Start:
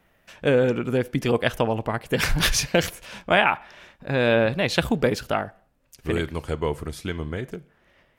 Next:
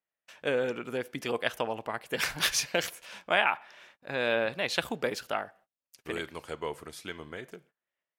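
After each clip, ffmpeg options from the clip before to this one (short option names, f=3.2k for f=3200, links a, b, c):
-af "highpass=f=620:p=1,agate=range=-24dB:threshold=-53dB:ratio=16:detection=peak,volume=-5dB"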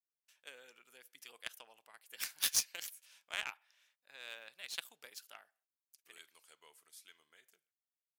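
-af "aderivative,aeval=exprs='0.168*(cos(1*acos(clip(val(0)/0.168,-1,1)))-cos(1*PI/2))+0.00944*(cos(3*acos(clip(val(0)/0.168,-1,1)))-cos(3*PI/2))+0.0133*(cos(7*acos(clip(val(0)/0.168,-1,1)))-cos(7*PI/2))':c=same,volume=1.5dB"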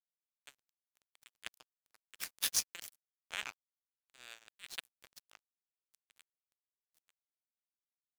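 -af "aeval=exprs='sgn(val(0))*max(abs(val(0))-0.00501,0)':c=same"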